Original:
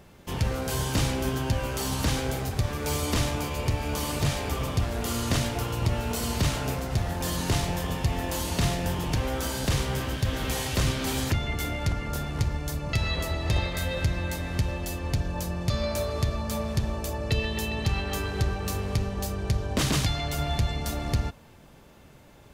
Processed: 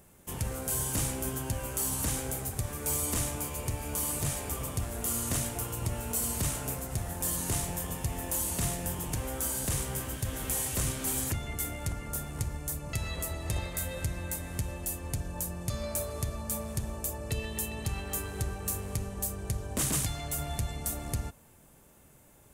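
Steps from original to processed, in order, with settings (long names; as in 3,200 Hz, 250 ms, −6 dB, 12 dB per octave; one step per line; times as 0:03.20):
high shelf with overshoot 6,400 Hz +12 dB, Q 1.5
level −7.5 dB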